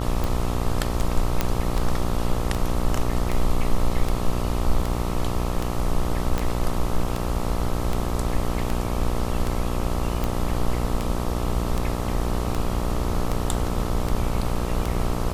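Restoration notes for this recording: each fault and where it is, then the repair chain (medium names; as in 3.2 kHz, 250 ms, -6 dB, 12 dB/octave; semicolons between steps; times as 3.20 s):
buzz 60 Hz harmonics 22 -27 dBFS
tick 78 rpm
1.41 s: pop -6 dBFS
6.38 s: pop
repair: de-click; de-hum 60 Hz, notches 22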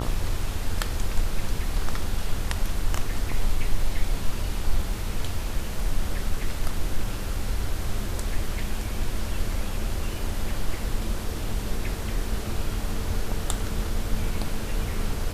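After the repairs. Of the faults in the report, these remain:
6.38 s: pop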